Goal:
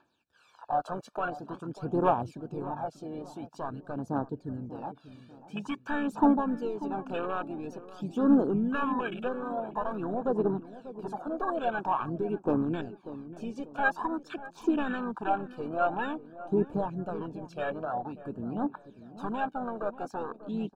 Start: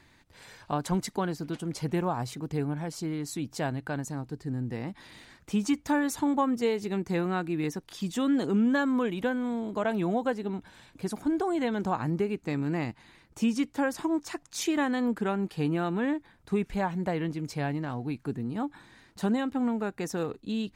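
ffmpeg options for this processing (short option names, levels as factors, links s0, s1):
-filter_complex "[0:a]highpass=f=380:p=1,asplit=2[s0][s1];[s1]highpass=f=720:p=1,volume=5.01,asoftclip=type=tanh:threshold=0.158[s2];[s0][s2]amix=inputs=2:normalize=0,lowpass=f=1400:p=1,volume=0.501,asplit=2[s3][s4];[s4]alimiter=level_in=1.78:limit=0.0631:level=0:latency=1:release=30,volume=0.562,volume=0.841[s5];[s3][s5]amix=inputs=2:normalize=0,aphaser=in_gain=1:out_gain=1:delay=1.8:decay=0.73:speed=0.48:type=triangular,aeval=exprs='clip(val(0),-1,0.251)':c=same,asplit=3[s6][s7][s8];[s7]asetrate=33038,aresample=44100,atempo=1.33484,volume=0.158[s9];[s8]asetrate=35002,aresample=44100,atempo=1.25992,volume=0.224[s10];[s6][s9][s10]amix=inputs=3:normalize=0,afwtdn=0.0316,asuperstop=centerf=2000:order=8:qfactor=3.5,asplit=2[s11][s12];[s12]adelay=591,lowpass=f=860:p=1,volume=0.211,asplit=2[s13][s14];[s14]adelay=591,lowpass=f=860:p=1,volume=0.41,asplit=2[s15][s16];[s16]adelay=591,lowpass=f=860:p=1,volume=0.41,asplit=2[s17][s18];[s18]adelay=591,lowpass=f=860:p=1,volume=0.41[s19];[s11][s13][s15][s17][s19]amix=inputs=5:normalize=0,volume=0.531"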